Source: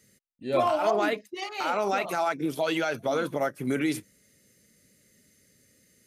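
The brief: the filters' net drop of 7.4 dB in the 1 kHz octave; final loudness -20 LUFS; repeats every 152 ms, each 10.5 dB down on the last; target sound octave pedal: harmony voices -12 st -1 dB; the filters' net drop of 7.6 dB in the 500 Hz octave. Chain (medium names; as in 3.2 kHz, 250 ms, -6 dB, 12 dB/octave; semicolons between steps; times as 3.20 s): peaking EQ 500 Hz -7.5 dB; peaking EQ 1 kHz -7.5 dB; feedback delay 152 ms, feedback 30%, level -10.5 dB; harmony voices -12 st -1 dB; trim +10.5 dB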